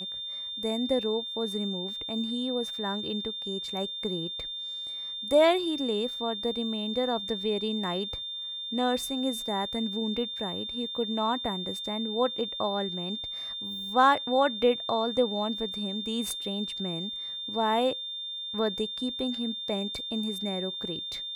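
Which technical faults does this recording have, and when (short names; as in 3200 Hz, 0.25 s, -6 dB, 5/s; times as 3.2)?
tone 3600 Hz -34 dBFS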